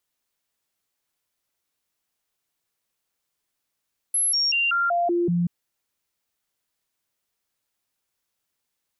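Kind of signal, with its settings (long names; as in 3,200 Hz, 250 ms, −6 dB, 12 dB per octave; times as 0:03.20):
stepped sweep 11,100 Hz down, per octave 1, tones 7, 0.19 s, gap 0.00 s −19 dBFS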